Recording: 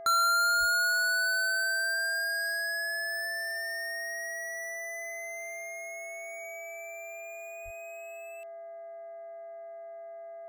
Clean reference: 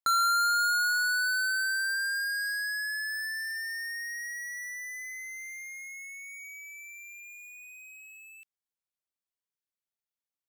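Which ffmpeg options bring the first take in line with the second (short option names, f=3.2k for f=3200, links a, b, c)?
-filter_complex "[0:a]bandreject=f=407.9:t=h:w=4,bandreject=f=815.8:t=h:w=4,bandreject=f=1.2237k:t=h:w=4,bandreject=f=1.6316k:t=h:w=4,bandreject=f=2.0395k:t=h:w=4,bandreject=f=670:w=30,asplit=3[a][b][c];[a]afade=t=out:st=0.59:d=0.02[d];[b]highpass=f=140:w=0.5412,highpass=f=140:w=1.3066,afade=t=in:st=0.59:d=0.02,afade=t=out:st=0.71:d=0.02[e];[c]afade=t=in:st=0.71:d=0.02[f];[d][e][f]amix=inputs=3:normalize=0,asplit=3[g][h][i];[g]afade=t=out:st=7.64:d=0.02[j];[h]highpass=f=140:w=0.5412,highpass=f=140:w=1.3066,afade=t=in:st=7.64:d=0.02,afade=t=out:st=7.76:d=0.02[k];[i]afade=t=in:st=7.76:d=0.02[l];[j][k][l]amix=inputs=3:normalize=0"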